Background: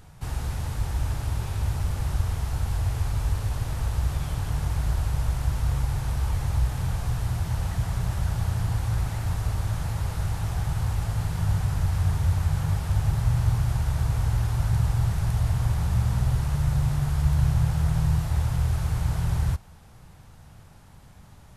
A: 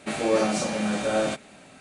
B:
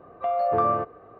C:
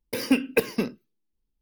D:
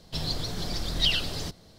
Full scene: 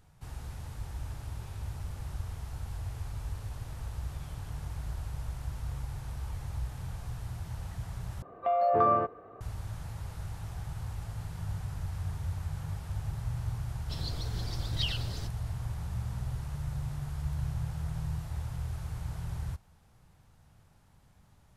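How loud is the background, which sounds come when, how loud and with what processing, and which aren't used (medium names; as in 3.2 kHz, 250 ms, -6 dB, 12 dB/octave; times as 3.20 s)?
background -12 dB
8.22 s: replace with B -2 dB
13.77 s: add D -9.5 dB
not used: A, C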